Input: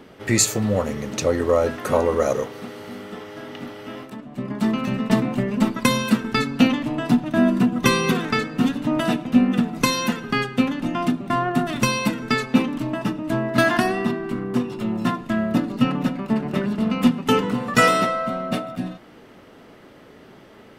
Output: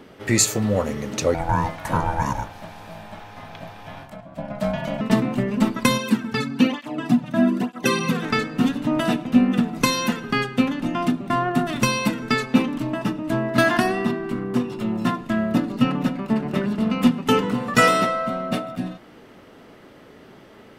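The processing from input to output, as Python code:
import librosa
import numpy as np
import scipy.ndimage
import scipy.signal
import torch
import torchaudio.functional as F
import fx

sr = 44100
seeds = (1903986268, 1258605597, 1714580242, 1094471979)

y = fx.ring_mod(x, sr, carrier_hz=410.0, at=(1.34, 5.01))
y = fx.flanger_cancel(y, sr, hz=1.1, depth_ms=3.2, at=(5.97, 8.21), fade=0.02)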